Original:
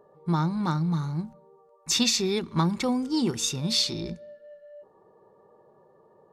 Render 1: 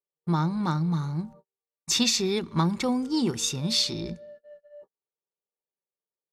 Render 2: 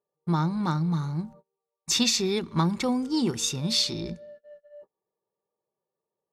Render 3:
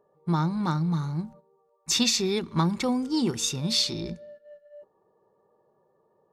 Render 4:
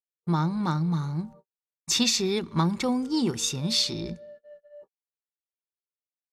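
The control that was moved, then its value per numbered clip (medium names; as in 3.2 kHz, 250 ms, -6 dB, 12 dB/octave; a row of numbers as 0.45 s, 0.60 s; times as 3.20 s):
gate, range: -45 dB, -30 dB, -9 dB, -59 dB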